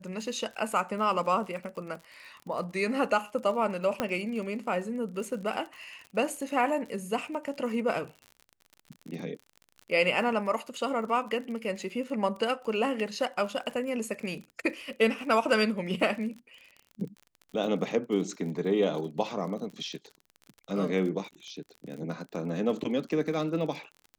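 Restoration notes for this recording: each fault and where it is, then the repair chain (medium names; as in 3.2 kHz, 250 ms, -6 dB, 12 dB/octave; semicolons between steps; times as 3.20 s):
crackle 45 per s -38 dBFS
4.00 s: pop -13 dBFS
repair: de-click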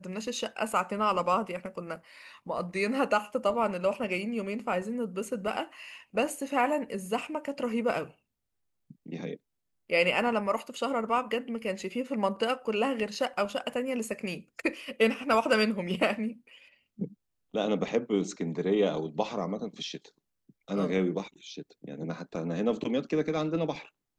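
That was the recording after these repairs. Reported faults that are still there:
nothing left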